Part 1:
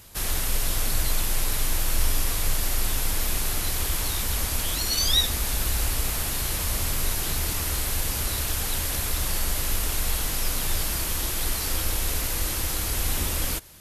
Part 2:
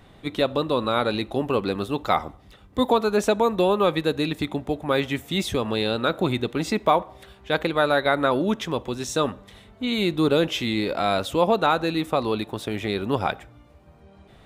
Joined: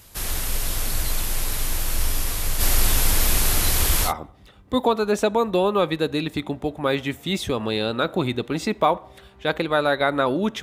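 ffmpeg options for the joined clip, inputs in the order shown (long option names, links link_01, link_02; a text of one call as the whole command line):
ffmpeg -i cue0.wav -i cue1.wav -filter_complex "[0:a]asplit=3[link_01][link_02][link_03];[link_01]afade=type=out:start_time=2.59:duration=0.02[link_04];[link_02]acontrast=68,afade=type=in:start_time=2.59:duration=0.02,afade=type=out:start_time=4.13:duration=0.02[link_05];[link_03]afade=type=in:start_time=4.13:duration=0.02[link_06];[link_04][link_05][link_06]amix=inputs=3:normalize=0,apad=whole_dur=10.62,atrim=end=10.62,atrim=end=4.13,asetpts=PTS-STARTPTS[link_07];[1:a]atrim=start=2.08:end=8.67,asetpts=PTS-STARTPTS[link_08];[link_07][link_08]acrossfade=duration=0.1:curve1=tri:curve2=tri" out.wav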